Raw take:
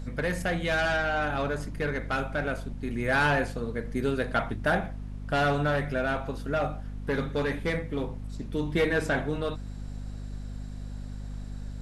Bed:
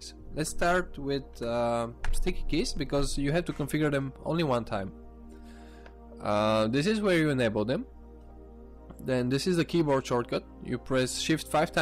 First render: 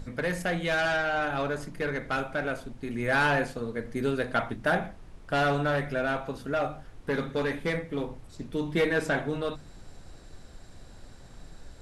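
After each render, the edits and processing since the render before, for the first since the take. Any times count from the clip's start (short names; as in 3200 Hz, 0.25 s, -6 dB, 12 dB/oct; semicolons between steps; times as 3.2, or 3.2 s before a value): notches 50/100/150/200/250 Hz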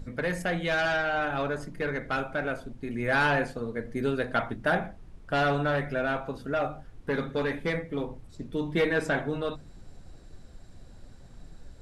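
denoiser 6 dB, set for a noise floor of -49 dBFS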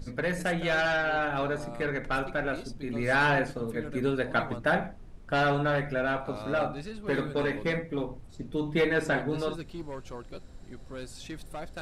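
add bed -14 dB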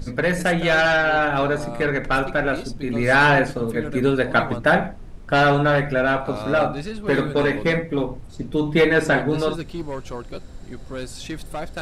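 gain +9 dB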